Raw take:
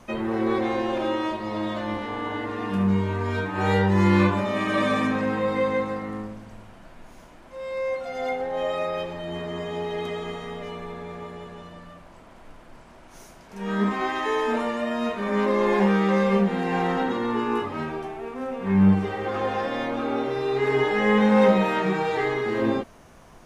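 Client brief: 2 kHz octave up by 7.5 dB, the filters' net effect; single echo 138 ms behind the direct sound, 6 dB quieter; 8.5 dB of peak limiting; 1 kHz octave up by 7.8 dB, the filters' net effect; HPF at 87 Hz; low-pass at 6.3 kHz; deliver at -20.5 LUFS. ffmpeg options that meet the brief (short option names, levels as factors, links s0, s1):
-af "highpass=87,lowpass=6300,equalizer=f=1000:t=o:g=8,equalizer=f=2000:t=o:g=6.5,alimiter=limit=0.237:level=0:latency=1,aecho=1:1:138:0.501,volume=1.19"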